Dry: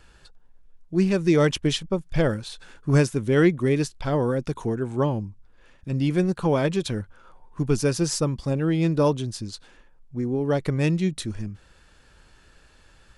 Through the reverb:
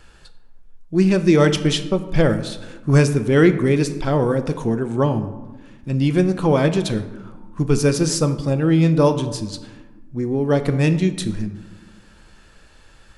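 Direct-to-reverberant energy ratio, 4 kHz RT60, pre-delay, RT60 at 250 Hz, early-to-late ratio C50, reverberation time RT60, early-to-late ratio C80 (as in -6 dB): 9.0 dB, 0.60 s, 4 ms, 1.9 s, 12.0 dB, 1.2 s, 13.5 dB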